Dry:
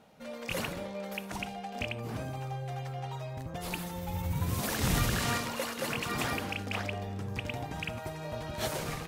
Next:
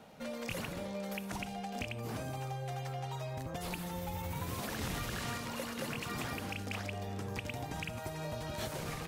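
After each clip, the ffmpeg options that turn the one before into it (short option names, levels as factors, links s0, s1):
-filter_complex "[0:a]acrossover=split=260|4600[s0][s1][s2];[s0]acompressor=threshold=0.00501:ratio=4[s3];[s1]acompressor=threshold=0.00562:ratio=4[s4];[s2]acompressor=threshold=0.002:ratio=4[s5];[s3][s4][s5]amix=inputs=3:normalize=0,volume=1.58"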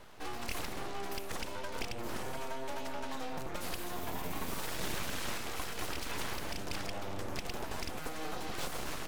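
-af "aeval=exprs='abs(val(0))':c=same,volume=1.5"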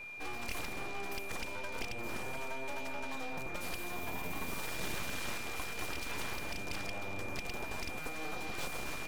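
-af "aeval=exprs='val(0)+0.00794*sin(2*PI*2400*n/s)':c=same,volume=0.794"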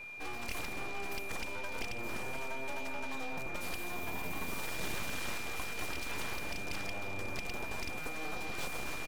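-af "aecho=1:1:540:0.2"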